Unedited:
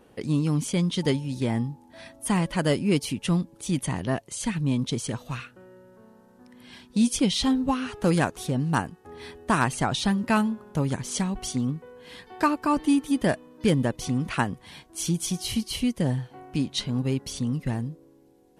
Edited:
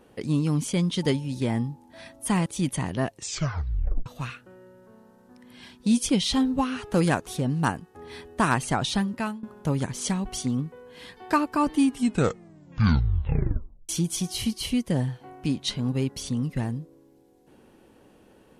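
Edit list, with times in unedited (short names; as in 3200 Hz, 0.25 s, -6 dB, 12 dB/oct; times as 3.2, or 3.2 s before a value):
2.46–3.56 cut
4.21 tape stop 0.95 s
10.01–10.53 fade out linear, to -18.5 dB
12.87 tape stop 2.12 s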